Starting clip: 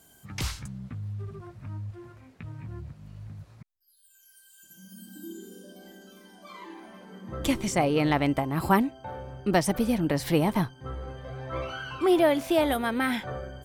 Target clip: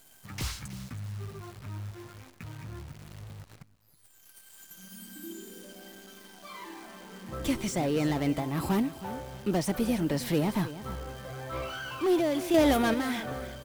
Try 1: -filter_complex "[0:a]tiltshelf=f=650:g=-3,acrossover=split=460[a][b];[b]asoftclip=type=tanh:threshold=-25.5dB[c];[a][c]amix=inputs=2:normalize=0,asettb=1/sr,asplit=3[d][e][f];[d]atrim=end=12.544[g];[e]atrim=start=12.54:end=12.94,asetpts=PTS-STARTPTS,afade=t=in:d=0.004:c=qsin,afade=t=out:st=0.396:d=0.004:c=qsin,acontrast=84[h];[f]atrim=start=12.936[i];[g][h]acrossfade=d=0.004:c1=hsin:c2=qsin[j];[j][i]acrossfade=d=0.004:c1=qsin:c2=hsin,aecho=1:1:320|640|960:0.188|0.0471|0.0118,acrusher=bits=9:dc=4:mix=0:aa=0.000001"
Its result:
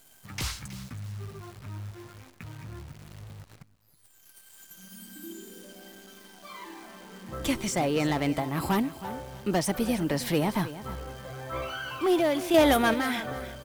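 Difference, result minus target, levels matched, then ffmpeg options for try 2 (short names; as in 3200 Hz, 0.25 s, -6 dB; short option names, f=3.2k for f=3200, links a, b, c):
soft clip: distortion -5 dB
-filter_complex "[0:a]tiltshelf=f=650:g=-3,acrossover=split=460[a][b];[b]asoftclip=type=tanh:threshold=-34dB[c];[a][c]amix=inputs=2:normalize=0,asettb=1/sr,asplit=3[d][e][f];[d]atrim=end=12.544[g];[e]atrim=start=12.54:end=12.94,asetpts=PTS-STARTPTS,afade=t=in:d=0.004:c=qsin,afade=t=out:st=0.396:d=0.004:c=qsin,acontrast=84[h];[f]atrim=start=12.936[i];[g][h]acrossfade=d=0.004:c1=hsin:c2=qsin[j];[j][i]acrossfade=d=0.004:c1=qsin:c2=hsin,aecho=1:1:320|640|960:0.188|0.0471|0.0118,acrusher=bits=9:dc=4:mix=0:aa=0.000001"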